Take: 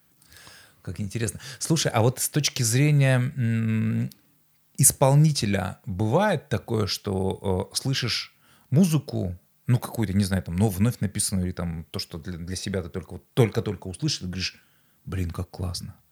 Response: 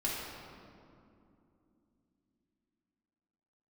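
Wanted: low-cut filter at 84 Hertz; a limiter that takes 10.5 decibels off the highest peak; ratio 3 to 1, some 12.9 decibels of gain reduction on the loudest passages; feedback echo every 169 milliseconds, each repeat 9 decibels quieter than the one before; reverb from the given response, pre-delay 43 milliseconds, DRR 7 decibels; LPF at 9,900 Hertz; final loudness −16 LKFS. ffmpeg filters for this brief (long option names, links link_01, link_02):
-filter_complex "[0:a]highpass=84,lowpass=9900,acompressor=threshold=-32dB:ratio=3,alimiter=level_in=2dB:limit=-24dB:level=0:latency=1,volume=-2dB,aecho=1:1:169|338|507|676:0.355|0.124|0.0435|0.0152,asplit=2[link_01][link_02];[1:a]atrim=start_sample=2205,adelay=43[link_03];[link_02][link_03]afir=irnorm=-1:irlink=0,volume=-12.5dB[link_04];[link_01][link_04]amix=inputs=2:normalize=0,volume=19.5dB"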